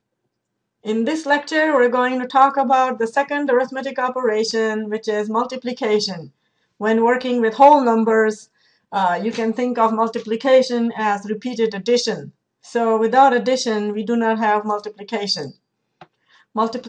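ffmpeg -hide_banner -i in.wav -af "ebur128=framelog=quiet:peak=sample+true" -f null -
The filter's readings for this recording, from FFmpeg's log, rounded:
Integrated loudness:
  I:         -18.4 LUFS
  Threshold: -28.9 LUFS
Loudness range:
  LRA:         3.9 LU
  Threshold: -38.7 LUFS
  LRA low:   -21.0 LUFS
  LRA high:  -17.2 LUFS
Sample peak:
  Peak:       -1.6 dBFS
True peak:
  Peak:       -1.6 dBFS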